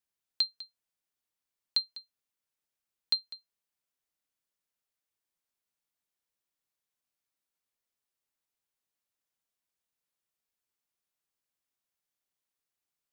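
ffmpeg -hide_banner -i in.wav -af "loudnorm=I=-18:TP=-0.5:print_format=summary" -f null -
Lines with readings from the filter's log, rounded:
Input Integrated:    -31.8 LUFS
Input True Peak:     -16.2 dBTP
Input LRA:             3.0 LU
Input Threshold:     -43.8 LUFS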